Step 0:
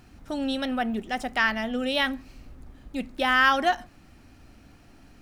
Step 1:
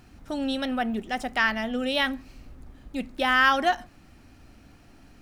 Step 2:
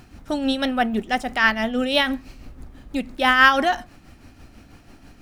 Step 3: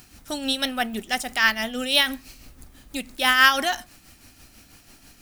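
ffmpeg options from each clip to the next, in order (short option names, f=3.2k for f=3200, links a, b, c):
-af anull
-af "tremolo=f=6.1:d=0.5,volume=7.5dB"
-af "crystalizer=i=6.5:c=0,volume=-7.5dB"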